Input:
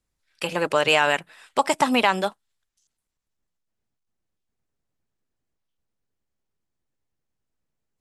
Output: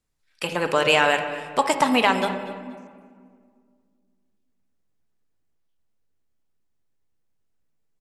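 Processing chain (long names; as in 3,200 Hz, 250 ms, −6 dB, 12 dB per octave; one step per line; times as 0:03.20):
repeating echo 239 ms, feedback 29%, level −18.5 dB
convolution reverb RT60 2.0 s, pre-delay 4 ms, DRR 7 dB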